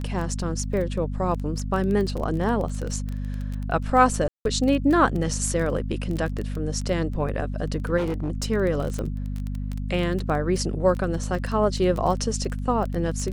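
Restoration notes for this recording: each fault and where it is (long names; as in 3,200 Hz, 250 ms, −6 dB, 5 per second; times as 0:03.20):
surface crackle 16 per second −27 dBFS
mains hum 50 Hz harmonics 5 −29 dBFS
0:00.73: drop-out 2.6 ms
0:04.28–0:04.45: drop-out 172 ms
0:07.97–0:08.46: clipping −22 dBFS
0:08.99: click −18 dBFS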